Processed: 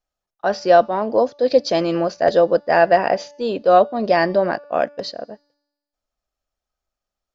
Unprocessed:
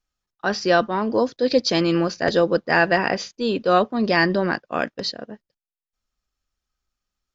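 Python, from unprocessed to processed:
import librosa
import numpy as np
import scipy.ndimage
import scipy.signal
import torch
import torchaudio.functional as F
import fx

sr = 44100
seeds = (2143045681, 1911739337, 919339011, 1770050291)

y = fx.peak_eq(x, sr, hz=640.0, db=13.5, octaves=0.9)
y = fx.comb_fb(y, sr, f0_hz=290.0, decay_s=1.1, harmonics='all', damping=0.0, mix_pct=40)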